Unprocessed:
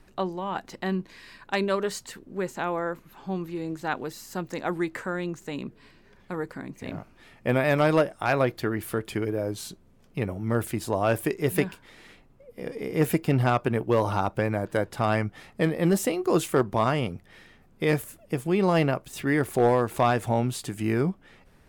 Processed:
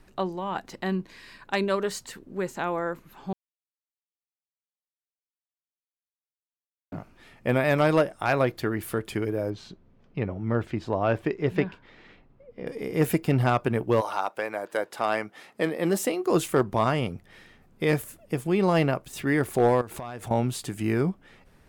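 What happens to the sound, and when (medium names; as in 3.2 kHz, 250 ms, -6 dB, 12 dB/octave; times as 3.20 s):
3.33–6.92 s: mute
9.50–12.67 s: distance through air 190 m
14.00–16.30 s: high-pass 680 Hz -> 190 Hz
19.81–20.31 s: compression 16:1, threshold -32 dBFS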